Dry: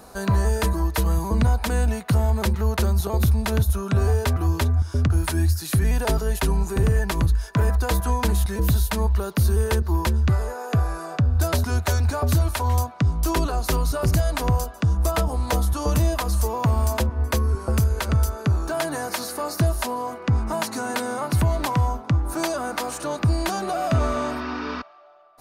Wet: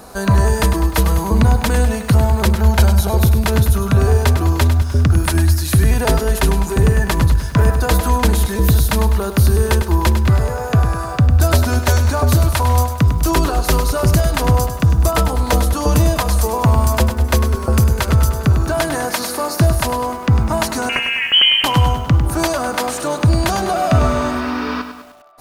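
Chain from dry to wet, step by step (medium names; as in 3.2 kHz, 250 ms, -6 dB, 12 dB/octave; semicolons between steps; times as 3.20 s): 2.54–3.12 s: comb 1.3 ms, depth 49%; 20.89–21.64 s: frequency inversion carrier 3.1 kHz; bit-crushed delay 101 ms, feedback 55%, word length 8-bit, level -9 dB; trim +7 dB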